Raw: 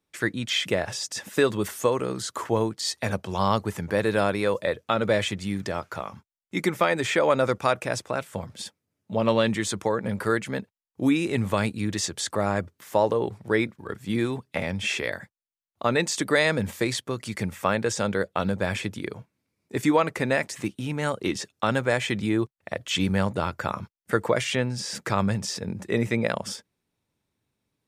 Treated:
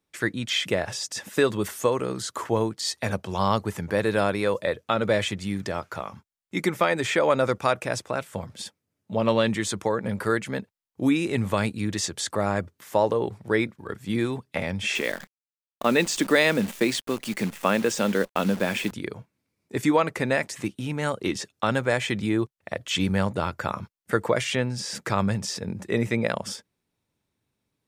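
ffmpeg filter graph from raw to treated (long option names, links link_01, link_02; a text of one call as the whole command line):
ffmpeg -i in.wav -filter_complex "[0:a]asettb=1/sr,asplit=3[link_01][link_02][link_03];[link_01]atrim=end=14.954[link_04];[link_02]atrim=start=14.95:end=18.92,asetpts=PTS-STARTPTS,afade=type=in:duration=0.004:curve=qsin,afade=type=out:start_time=3.966:duration=0.004:curve=qsin,highpass=frequency=220:width_type=q:width=1.8,equalizer=frequency=2800:width_type=o:width=0.47:gain=5.5,acrusher=bits=7:dc=4:mix=0:aa=0.000001[link_05];[link_03]atrim=start=18.916[link_06];[link_04][link_05]acrossfade=duration=0.004:curve1=hsin:curve2=qsin[link_07];[link_07][link_06]acrossfade=duration=0.004:curve1=qsin:curve2=hsin" out.wav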